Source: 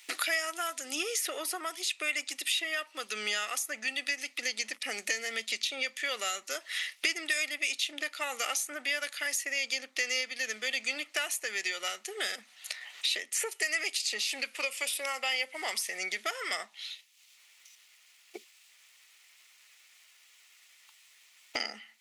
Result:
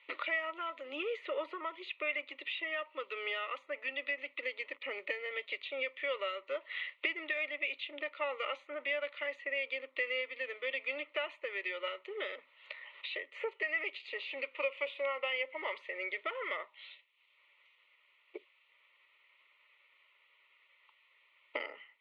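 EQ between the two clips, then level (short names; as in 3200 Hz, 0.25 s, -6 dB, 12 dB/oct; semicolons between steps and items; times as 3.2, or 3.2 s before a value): air absorption 390 m; speaker cabinet 240–5600 Hz, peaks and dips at 260 Hz +6 dB, 580 Hz +9 dB, 950 Hz +5 dB, 1900 Hz +6 dB; fixed phaser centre 1100 Hz, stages 8; 0.0 dB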